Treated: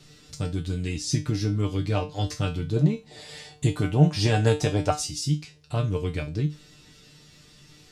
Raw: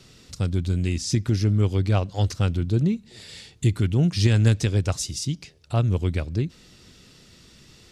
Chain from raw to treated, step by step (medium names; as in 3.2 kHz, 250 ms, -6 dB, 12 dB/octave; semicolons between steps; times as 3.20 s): 2.76–4.91 s: peaking EQ 730 Hz +13 dB 1.2 oct; feedback comb 150 Hz, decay 0.25 s, harmonics all, mix 90%; trim +8.5 dB